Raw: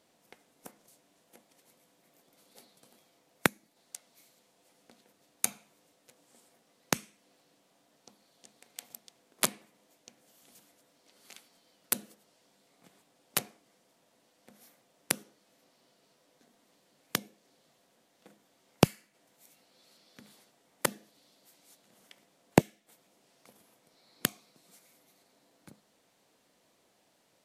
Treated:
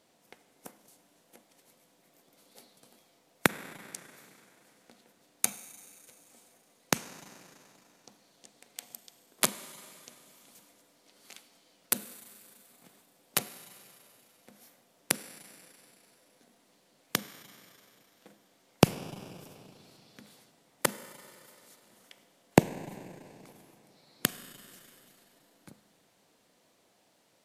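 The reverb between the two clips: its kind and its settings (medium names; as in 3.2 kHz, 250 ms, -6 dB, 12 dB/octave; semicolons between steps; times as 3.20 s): Schroeder reverb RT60 2.9 s, combs from 33 ms, DRR 14 dB; trim +1.5 dB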